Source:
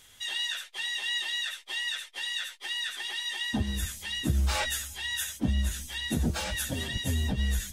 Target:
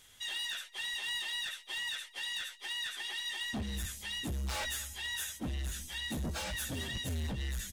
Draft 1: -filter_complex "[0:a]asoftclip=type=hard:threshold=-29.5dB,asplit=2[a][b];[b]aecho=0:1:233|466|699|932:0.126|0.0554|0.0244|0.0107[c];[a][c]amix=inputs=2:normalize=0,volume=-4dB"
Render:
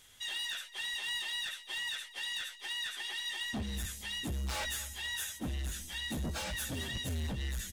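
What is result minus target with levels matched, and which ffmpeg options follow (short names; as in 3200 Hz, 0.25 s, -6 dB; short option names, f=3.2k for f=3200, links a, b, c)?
echo-to-direct +6.5 dB
-filter_complex "[0:a]asoftclip=type=hard:threshold=-29.5dB,asplit=2[a][b];[b]aecho=0:1:233|466|699:0.0596|0.0262|0.0115[c];[a][c]amix=inputs=2:normalize=0,volume=-4dB"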